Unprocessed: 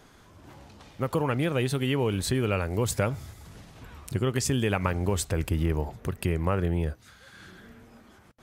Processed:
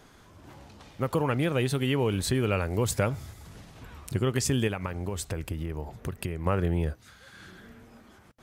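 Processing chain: 4.67–6.46 s: compression, threshold -29 dBFS, peak gain reduction 9 dB

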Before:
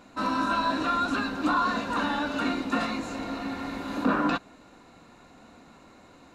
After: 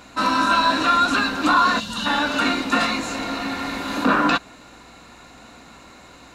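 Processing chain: time-frequency box 1.79–2.06 s, 250–2700 Hz -14 dB; hum 60 Hz, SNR 32 dB; tilt shelf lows -4.5 dB, about 1.1 kHz; trim +8.5 dB

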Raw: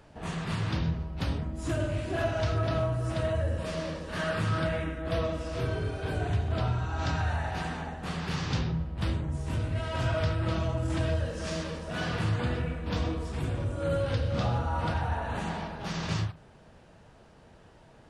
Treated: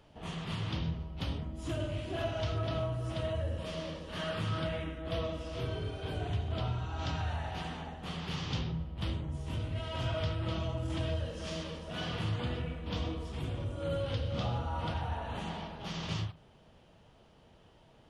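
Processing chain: graphic EQ with 31 bands 1.6 kHz -5 dB, 3.15 kHz +8 dB, 8 kHz -5 dB; trim -5.5 dB

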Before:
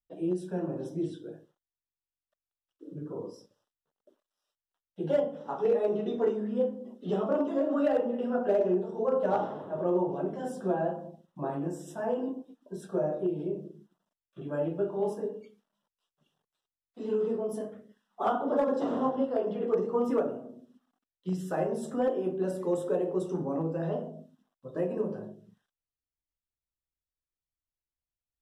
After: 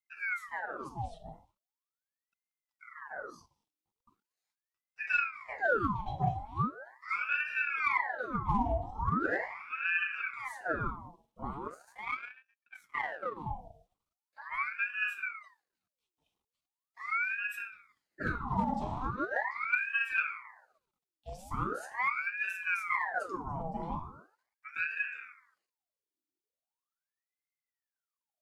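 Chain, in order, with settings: static phaser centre 490 Hz, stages 4; 11.68–13.37 s: power-law waveshaper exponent 1.4; ring modulator with a swept carrier 1.2 kHz, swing 75%, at 0.4 Hz

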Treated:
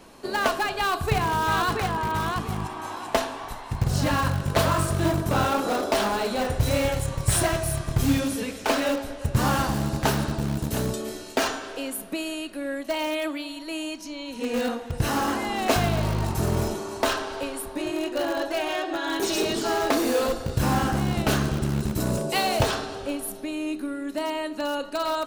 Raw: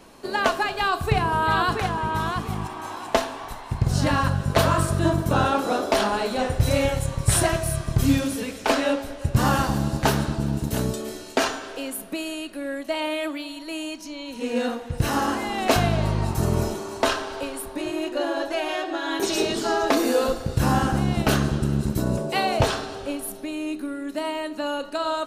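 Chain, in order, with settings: 22.00–22.63 s: treble shelf 4.4 kHz +9 dB; in parallel at -10.5 dB: integer overflow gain 18.5 dB; on the sum: trim -2.5 dB

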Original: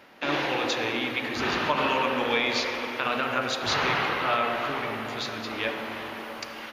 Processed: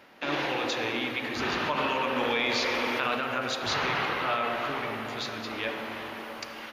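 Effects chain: in parallel at +2 dB: peak limiter -17.5 dBFS, peak gain reduction 7.5 dB; 2.16–3.15 s: on the sum: level flattener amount 70%; trim -9 dB

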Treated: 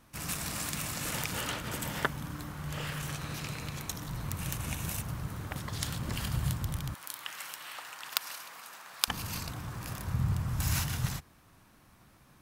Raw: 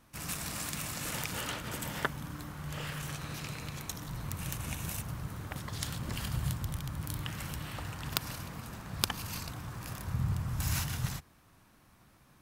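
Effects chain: 6.94–9.08 s: high-pass 880 Hz 12 dB/octave; trim +2 dB

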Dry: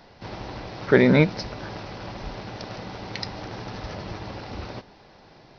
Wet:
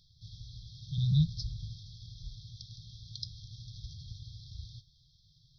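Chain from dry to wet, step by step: 0.98–1.73 s: bass shelf 190 Hz +10 dB; brick-wall FIR band-stop 160–3200 Hz; trim -6.5 dB

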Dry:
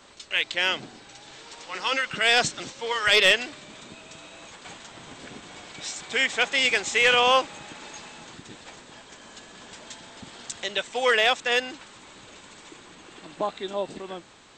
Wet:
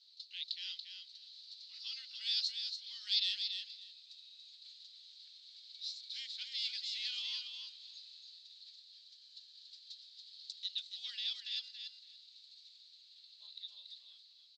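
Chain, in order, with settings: Butterworth band-pass 4.3 kHz, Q 4.2; feedback delay 283 ms, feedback 15%, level -6.5 dB; trim -1 dB

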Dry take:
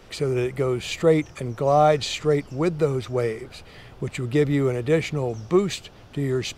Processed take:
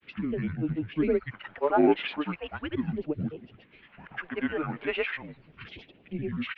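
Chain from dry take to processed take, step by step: phase shifter stages 2, 0.38 Hz, lowest notch 210–1400 Hz; granulator 100 ms, pitch spread up and down by 7 st; mistuned SSB -160 Hz 320–3000 Hz

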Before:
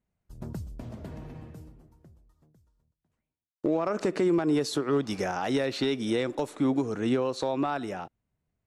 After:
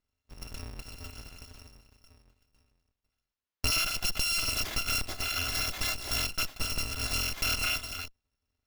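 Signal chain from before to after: bit-reversed sample order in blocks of 256 samples; sliding maximum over 5 samples

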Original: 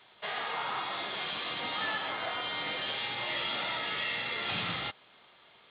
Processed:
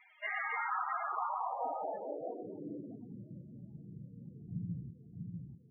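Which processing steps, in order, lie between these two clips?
two-band feedback delay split 2.9 kHz, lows 645 ms, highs 87 ms, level -4.5 dB; low-pass sweep 2.3 kHz -> 160 Hz, 0.42–3.48 s; loudest bins only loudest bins 16; trim -2 dB

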